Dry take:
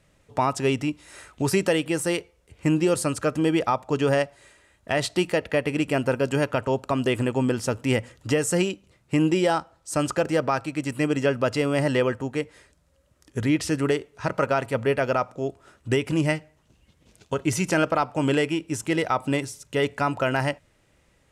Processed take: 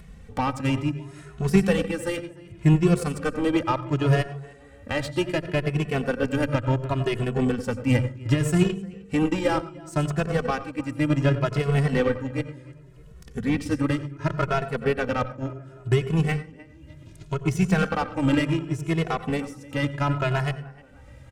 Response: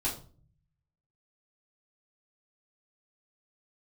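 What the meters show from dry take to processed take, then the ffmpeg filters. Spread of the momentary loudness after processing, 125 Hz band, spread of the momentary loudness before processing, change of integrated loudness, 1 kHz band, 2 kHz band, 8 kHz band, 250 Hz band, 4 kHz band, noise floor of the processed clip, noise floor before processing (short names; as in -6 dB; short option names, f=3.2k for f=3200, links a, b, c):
10 LU, +5.0 dB, 7 LU, -0.5 dB, -2.0 dB, -1.5 dB, -8.0 dB, +0.5 dB, -3.0 dB, -48 dBFS, -64 dBFS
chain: -filter_complex "[0:a]acompressor=mode=upward:threshold=-28dB:ratio=2.5,equalizer=f=1.7k:w=1.5:g=2,asplit=2[a][b];[b]adelay=305,lowpass=f=3.9k:p=1,volume=-14.5dB,asplit=2[c][d];[d]adelay=305,lowpass=f=3.9k:p=1,volume=0.44,asplit=2[e][f];[f]adelay=305,lowpass=f=3.9k:p=1,volume=0.44,asplit=2[g][h];[h]adelay=305,lowpass=f=3.9k:p=1,volume=0.44[i];[a][c][e][g][i]amix=inputs=5:normalize=0,asplit=2[j][k];[1:a]atrim=start_sample=2205,asetrate=70560,aresample=44100,adelay=85[l];[k][l]afir=irnorm=-1:irlink=0,volume=-11dB[m];[j][m]amix=inputs=2:normalize=0,aeval=exprs='0.422*(cos(1*acos(clip(val(0)/0.422,-1,1)))-cos(1*PI/2))+0.0376*(cos(7*acos(clip(val(0)/0.422,-1,1)))-cos(7*PI/2))':c=same,bass=f=250:g=11,treble=f=4k:g=-3,asplit=2[n][o];[o]adelay=2.3,afreqshift=0.68[p];[n][p]amix=inputs=2:normalize=1"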